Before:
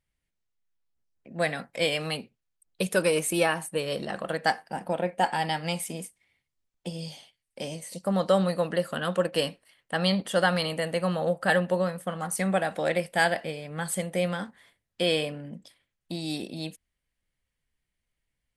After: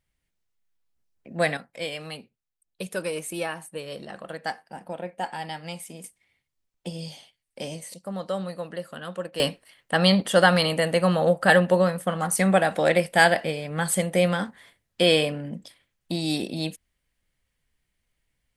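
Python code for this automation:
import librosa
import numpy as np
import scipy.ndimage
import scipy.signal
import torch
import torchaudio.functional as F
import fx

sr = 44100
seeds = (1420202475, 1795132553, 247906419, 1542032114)

y = fx.gain(x, sr, db=fx.steps((0.0, 3.5), (1.57, -6.0), (6.04, 1.0), (7.94, -7.0), (9.4, 6.0)))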